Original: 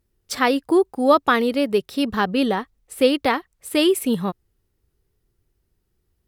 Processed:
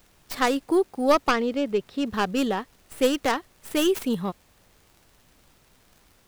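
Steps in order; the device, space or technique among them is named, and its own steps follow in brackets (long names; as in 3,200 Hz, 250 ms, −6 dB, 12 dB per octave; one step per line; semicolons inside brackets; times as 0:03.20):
0:01.31–0:02.07: high-frequency loss of the air 190 metres
record under a worn stylus (stylus tracing distortion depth 0.19 ms; surface crackle; pink noise bed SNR 33 dB)
level −4.5 dB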